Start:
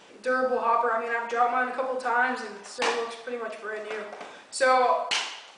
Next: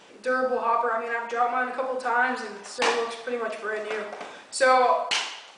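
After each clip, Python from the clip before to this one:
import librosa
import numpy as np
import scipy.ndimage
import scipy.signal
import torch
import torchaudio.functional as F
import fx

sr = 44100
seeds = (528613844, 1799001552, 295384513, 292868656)

y = fx.rider(x, sr, range_db=5, speed_s=2.0)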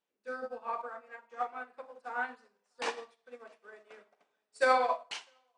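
y = x + 10.0 ** (-18.5 / 20.0) * np.pad(x, (int(654 * sr / 1000.0), 0))[:len(x)]
y = fx.upward_expand(y, sr, threshold_db=-39.0, expansion=2.5)
y = y * 10.0 ** (-5.0 / 20.0)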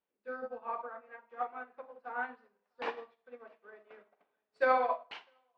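y = fx.air_absorb(x, sr, metres=360.0)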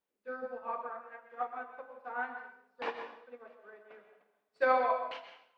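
y = fx.rev_plate(x, sr, seeds[0], rt60_s=0.65, hf_ratio=0.9, predelay_ms=110, drr_db=7.5)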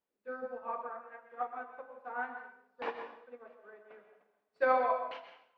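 y = fx.high_shelf(x, sr, hz=3400.0, db=-9.0)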